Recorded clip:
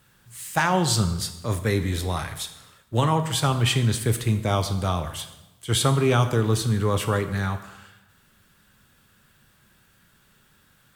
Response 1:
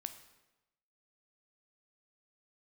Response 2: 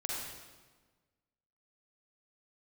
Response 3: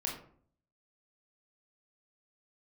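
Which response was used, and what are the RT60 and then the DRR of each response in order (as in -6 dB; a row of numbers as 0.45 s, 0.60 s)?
1; 1.0 s, 1.4 s, 0.55 s; 8.5 dB, -4.0 dB, -1.5 dB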